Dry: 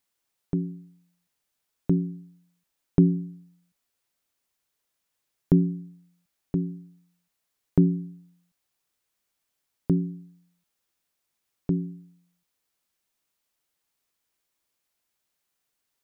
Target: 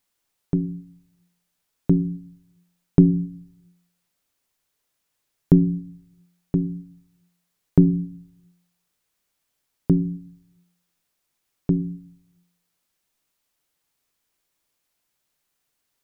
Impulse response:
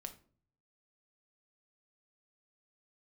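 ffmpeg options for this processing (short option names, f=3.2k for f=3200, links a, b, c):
-filter_complex "[0:a]asplit=2[a][b];[1:a]atrim=start_sample=2205,asetrate=35721,aresample=44100,lowshelf=f=340:g=8.5[c];[b][c]afir=irnorm=-1:irlink=0,volume=-8dB[d];[a][d]amix=inputs=2:normalize=0,volume=1.5dB"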